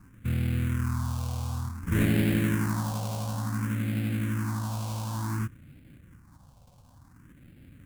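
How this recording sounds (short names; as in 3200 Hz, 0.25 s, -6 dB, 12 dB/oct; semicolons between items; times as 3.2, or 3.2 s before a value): aliases and images of a low sample rate 1300 Hz, jitter 20%; phasing stages 4, 0.56 Hz, lowest notch 300–1000 Hz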